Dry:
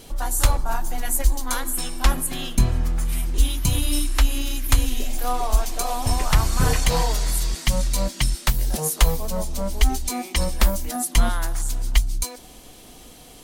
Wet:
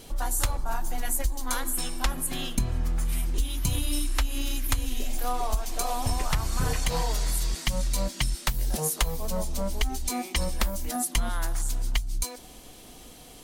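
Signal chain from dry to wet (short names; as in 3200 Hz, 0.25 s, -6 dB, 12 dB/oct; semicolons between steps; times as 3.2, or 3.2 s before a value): compressor, threshold -19 dBFS, peak gain reduction 9.5 dB; gain -2.5 dB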